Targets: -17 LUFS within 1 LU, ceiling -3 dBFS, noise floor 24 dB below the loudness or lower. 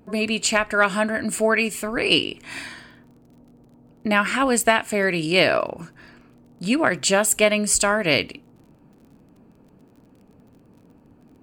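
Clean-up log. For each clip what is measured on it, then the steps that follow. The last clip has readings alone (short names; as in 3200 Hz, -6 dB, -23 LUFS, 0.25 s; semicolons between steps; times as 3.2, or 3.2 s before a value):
ticks 30/s; loudness -20.5 LUFS; peak -5.0 dBFS; loudness target -17.0 LUFS
-> de-click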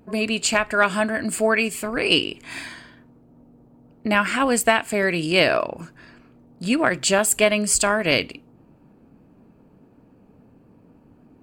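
ticks 0.26/s; loudness -20.5 LUFS; peak -5.0 dBFS; loudness target -17.0 LUFS
-> gain +3.5 dB; limiter -3 dBFS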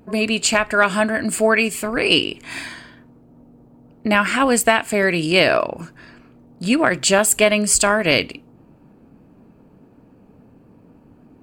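loudness -17.0 LUFS; peak -3.0 dBFS; noise floor -51 dBFS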